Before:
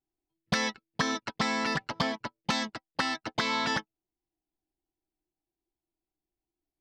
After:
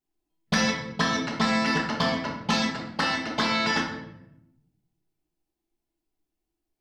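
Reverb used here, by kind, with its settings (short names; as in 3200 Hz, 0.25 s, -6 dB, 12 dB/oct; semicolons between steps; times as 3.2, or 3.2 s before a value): shoebox room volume 250 m³, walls mixed, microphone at 1.4 m; gain +1 dB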